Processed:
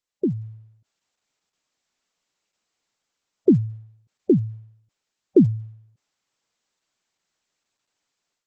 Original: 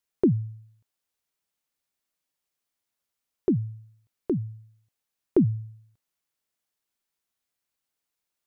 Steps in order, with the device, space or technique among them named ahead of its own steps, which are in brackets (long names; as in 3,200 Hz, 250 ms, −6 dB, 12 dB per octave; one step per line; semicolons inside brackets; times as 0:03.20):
noise-suppressed video call (high-pass filter 120 Hz 12 dB per octave; gate on every frequency bin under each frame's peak −20 dB strong; automatic gain control gain up to 13 dB; level −3 dB; Opus 12 kbit/s 48,000 Hz)